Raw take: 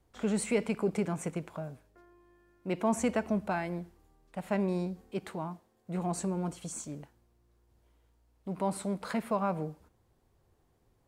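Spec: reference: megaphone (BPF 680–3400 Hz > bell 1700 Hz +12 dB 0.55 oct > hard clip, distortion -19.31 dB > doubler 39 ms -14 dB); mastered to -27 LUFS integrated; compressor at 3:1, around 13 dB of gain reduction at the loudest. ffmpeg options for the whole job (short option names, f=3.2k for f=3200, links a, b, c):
-filter_complex "[0:a]acompressor=threshold=-42dB:ratio=3,highpass=680,lowpass=3.4k,equalizer=f=1.7k:t=o:w=0.55:g=12,asoftclip=type=hard:threshold=-32dB,asplit=2[a][b];[b]adelay=39,volume=-14dB[c];[a][c]amix=inputs=2:normalize=0,volume=21dB"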